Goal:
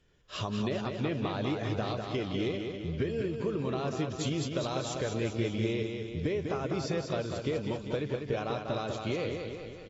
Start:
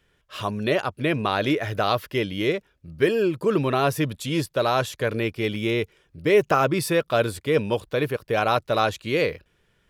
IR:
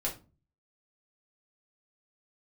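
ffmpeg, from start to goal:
-filter_complex "[0:a]dynaudnorm=framelen=290:gausssize=3:maxgain=12dB,asettb=1/sr,asplit=3[link_01][link_02][link_03];[link_01]atrim=end=4.414[link_04];[link_02]atrim=start=4.41:end=5.01,asetpts=PTS-STARTPTS,afade=type=in:duration=0.004:curve=qsin,afade=type=out:start_time=0.596:duration=0.004:curve=qsin,aemphasis=mode=production:type=cd[link_05];[link_03]atrim=start=5.006[link_06];[link_04][link_05]acrossfade=duration=0.004:curve1=hsin:curve2=qsin[link_07];[link_07][link_06]acrossfade=duration=0.004:curve1=qsin:curve2=hsin,acompressor=threshold=-29dB:ratio=8,equalizer=frequency=1700:width=0.51:gain=-8,aecho=1:1:198|396|594|792|990|1188|1386|1584:0.531|0.303|0.172|0.0983|0.056|0.0319|0.0182|0.0104" -ar 22050 -c:a aac -b:a 24k

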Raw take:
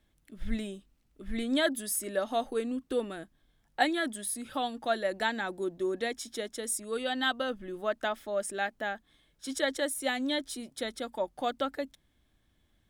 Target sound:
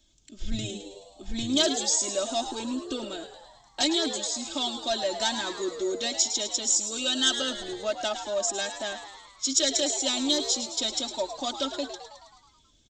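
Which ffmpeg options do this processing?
ffmpeg -i in.wav -filter_complex "[0:a]aresample=16000,asoftclip=type=tanh:threshold=-23dB,aresample=44100,aexciter=amount=11.4:drive=5.8:freq=2900,equalizer=frequency=4000:width_type=o:width=1.9:gain=-9,aecho=1:1:3.2:0.75,asplit=9[link_01][link_02][link_03][link_04][link_05][link_06][link_07][link_08][link_09];[link_02]adelay=107,afreqshift=95,volume=-10dB[link_10];[link_03]adelay=214,afreqshift=190,volume=-14.2dB[link_11];[link_04]adelay=321,afreqshift=285,volume=-18.3dB[link_12];[link_05]adelay=428,afreqshift=380,volume=-22.5dB[link_13];[link_06]adelay=535,afreqshift=475,volume=-26.6dB[link_14];[link_07]adelay=642,afreqshift=570,volume=-30.8dB[link_15];[link_08]adelay=749,afreqshift=665,volume=-34.9dB[link_16];[link_09]adelay=856,afreqshift=760,volume=-39.1dB[link_17];[link_01][link_10][link_11][link_12][link_13][link_14][link_15][link_16][link_17]amix=inputs=9:normalize=0" -ar 48000 -c:a libopus -b:a 64k out.opus

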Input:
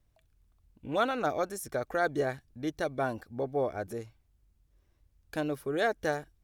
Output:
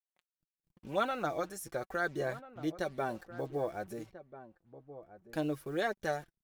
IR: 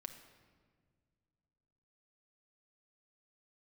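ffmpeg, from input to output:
-filter_complex "[0:a]acrusher=bits=8:mix=0:aa=0.5,flanger=delay=5.1:depth=1.3:regen=27:speed=1:shape=sinusoidal,asplit=2[link_01][link_02];[link_02]adelay=1341,volume=-14dB,highshelf=frequency=4000:gain=-30.2[link_03];[link_01][link_03]amix=inputs=2:normalize=0"

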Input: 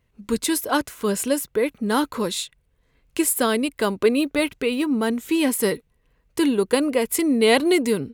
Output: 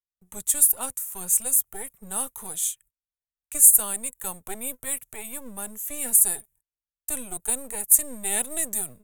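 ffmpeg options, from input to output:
ffmpeg -i in.wav -filter_complex "[0:a]agate=range=-28dB:threshold=-47dB:ratio=16:detection=peak,acrossover=split=240|540|6300[link_01][link_02][link_03][link_04];[link_02]aeval=exprs='abs(val(0))':channel_layout=same[link_05];[link_01][link_05][link_03][link_04]amix=inputs=4:normalize=0,asetrate=39690,aresample=44100,aexciter=amount=9.5:drive=6.9:freq=7200,adynamicequalizer=threshold=0.0447:dfrequency=4200:dqfactor=0.7:tfrequency=4200:tqfactor=0.7:attack=5:release=100:ratio=0.375:range=2.5:mode=boostabove:tftype=highshelf,volume=-14.5dB" out.wav

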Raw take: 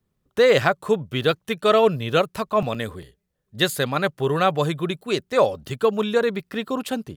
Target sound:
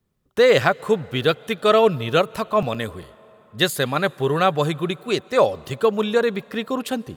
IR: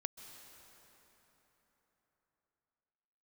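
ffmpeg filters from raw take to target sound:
-filter_complex "[0:a]asplit=2[link_01][link_02];[1:a]atrim=start_sample=2205,lowshelf=frequency=160:gain=-9[link_03];[link_02][link_03]afir=irnorm=-1:irlink=0,volume=-12dB[link_04];[link_01][link_04]amix=inputs=2:normalize=0"

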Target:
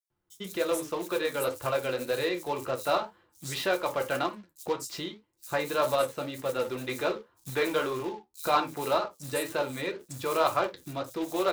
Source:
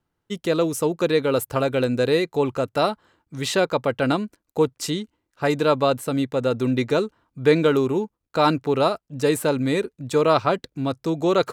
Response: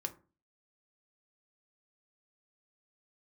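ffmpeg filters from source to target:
-filter_complex "[1:a]atrim=start_sample=2205,atrim=end_sample=3969[link_01];[0:a][link_01]afir=irnorm=-1:irlink=0,asettb=1/sr,asplit=3[link_02][link_03][link_04];[link_02]atrim=end=6.554[link_05];[link_03]atrim=start=6.55:end=7.93,asetpts=PTS-STARTPTS,afade=type=in:duration=0.004:curve=qsin,afade=type=out:start_time=1.376:duration=0.004:curve=qsin,aeval=exprs='0.447*(cos(1*acos(clip(val(0)/0.447,-1,1)))-cos(1*PI/2))+0.0224*(cos(5*acos(clip(val(0)/0.447,-1,1)))-cos(5*PI/2))':channel_layout=same[link_06];[link_04]atrim=start=7.926[link_07];[link_05][link_06]acrossfade=duration=0.004:curve1=hsin:curve2=qsin[link_08];[link_08][link_07]acrossfade=duration=0.004:curve1=qsin:curve2=hsin,flanger=delay=7.6:depth=6.1:regen=61:speed=1.9:shape=triangular,acrossover=split=490[link_09][link_10];[link_09]acompressor=threshold=-39dB:ratio=10[link_11];[link_11][link_10]amix=inputs=2:normalize=0,acrusher=bits=3:mode=log:mix=0:aa=0.000001,acrossover=split=5500[link_12][link_13];[link_12]adelay=100[link_14];[link_14][link_13]amix=inputs=2:normalize=0"

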